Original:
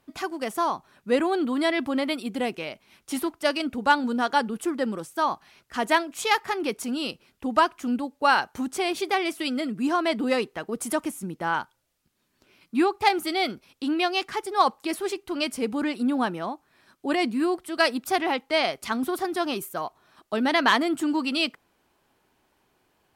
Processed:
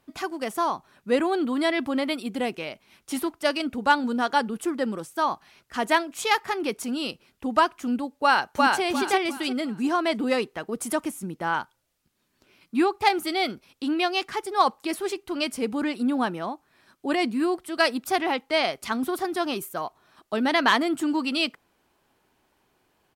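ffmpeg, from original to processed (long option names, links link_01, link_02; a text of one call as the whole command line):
ffmpeg -i in.wav -filter_complex "[0:a]asplit=2[link_01][link_02];[link_02]afade=type=in:start_time=8.23:duration=0.01,afade=type=out:start_time=8.82:duration=0.01,aecho=0:1:350|700|1050|1400:0.891251|0.267375|0.0802126|0.0240638[link_03];[link_01][link_03]amix=inputs=2:normalize=0" out.wav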